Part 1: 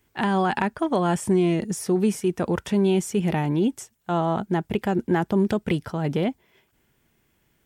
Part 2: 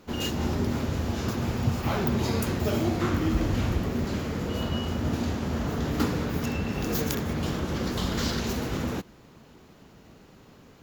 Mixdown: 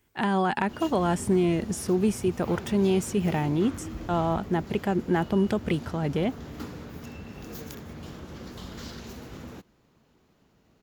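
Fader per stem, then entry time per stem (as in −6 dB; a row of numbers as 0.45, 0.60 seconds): −2.5, −12.0 decibels; 0.00, 0.60 seconds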